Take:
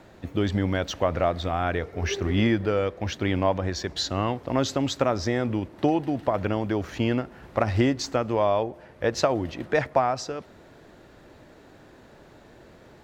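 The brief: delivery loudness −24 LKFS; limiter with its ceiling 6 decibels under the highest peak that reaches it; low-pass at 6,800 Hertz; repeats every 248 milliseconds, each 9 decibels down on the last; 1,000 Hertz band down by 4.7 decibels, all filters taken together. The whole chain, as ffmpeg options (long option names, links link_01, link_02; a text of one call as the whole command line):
ffmpeg -i in.wav -af "lowpass=6800,equalizer=frequency=1000:width_type=o:gain=-7,alimiter=limit=-16dB:level=0:latency=1,aecho=1:1:248|496|744|992:0.355|0.124|0.0435|0.0152,volume=4.5dB" out.wav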